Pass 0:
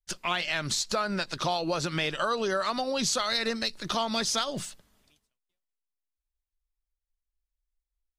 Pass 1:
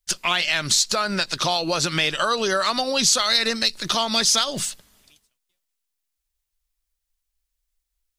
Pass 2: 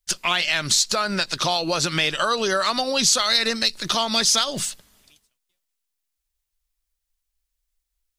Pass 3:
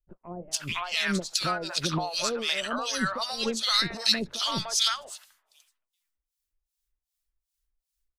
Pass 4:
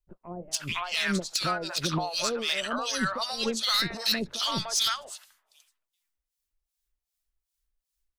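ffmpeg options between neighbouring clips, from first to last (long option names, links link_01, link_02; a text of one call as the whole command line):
ffmpeg -i in.wav -filter_complex "[0:a]highshelf=frequency=2100:gain=9,asplit=2[link_01][link_02];[link_02]alimiter=limit=-15.5dB:level=0:latency=1:release=255,volume=-3dB[link_03];[link_01][link_03]amix=inputs=2:normalize=0" out.wav
ffmpeg -i in.wav -af anull out.wav
ffmpeg -i in.wav -filter_complex "[0:a]acrossover=split=960[link_01][link_02];[link_01]aeval=exprs='val(0)*(1-1/2+1/2*cos(2*PI*2.6*n/s))':channel_layout=same[link_03];[link_02]aeval=exprs='val(0)*(1-1/2-1/2*cos(2*PI*2.6*n/s))':channel_layout=same[link_04];[link_03][link_04]amix=inputs=2:normalize=0,acrossover=split=650|2300[link_05][link_06][link_07];[link_07]adelay=440[link_08];[link_06]adelay=510[link_09];[link_05][link_09][link_08]amix=inputs=3:normalize=0" out.wav
ffmpeg -i in.wav -af "volume=19dB,asoftclip=hard,volume=-19dB" out.wav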